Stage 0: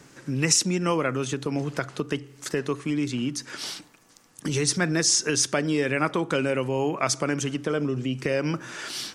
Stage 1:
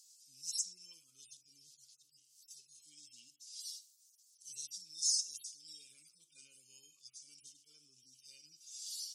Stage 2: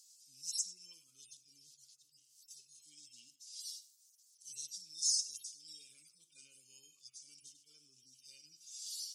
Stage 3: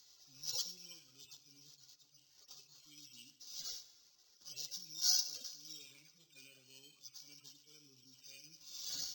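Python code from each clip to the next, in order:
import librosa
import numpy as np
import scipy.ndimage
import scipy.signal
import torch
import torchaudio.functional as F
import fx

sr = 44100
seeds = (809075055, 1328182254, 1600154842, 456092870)

y1 = fx.hpss_only(x, sr, part='harmonic')
y1 = scipy.signal.sosfilt(scipy.signal.cheby2(4, 50, 1900.0, 'highpass', fs=sr, output='sos'), y1)
y1 = F.gain(torch.from_numpy(y1), 1.0).numpy()
y2 = y1 + 10.0 ** (-19.0 / 20.0) * np.pad(y1, (int(97 * sr / 1000.0), 0))[:len(y1)]
y3 = np.convolve(y2, np.full(5, 1.0 / 5))[:len(y2)]
y3 = fx.rev_plate(y3, sr, seeds[0], rt60_s=2.6, hf_ratio=0.65, predelay_ms=0, drr_db=14.0)
y3 = np.repeat(y3[::4], 4)[:len(y3)]
y3 = F.gain(torch.from_numpy(y3), 8.0).numpy()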